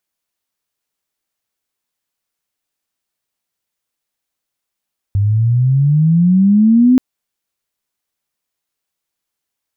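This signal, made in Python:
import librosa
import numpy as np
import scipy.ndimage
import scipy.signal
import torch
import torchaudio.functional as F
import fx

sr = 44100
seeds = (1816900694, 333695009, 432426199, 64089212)

y = fx.chirp(sr, length_s=1.83, from_hz=98.0, to_hz=260.0, law='logarithmic', from_db=-10.5, to_db=-5.5)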